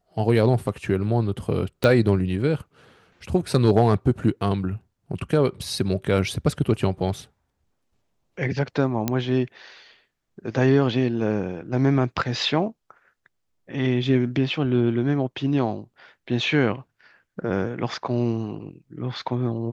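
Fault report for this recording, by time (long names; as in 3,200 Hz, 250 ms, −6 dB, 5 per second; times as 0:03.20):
0:01.84: click −8 dBFS
0:09.08: click −8 dBFS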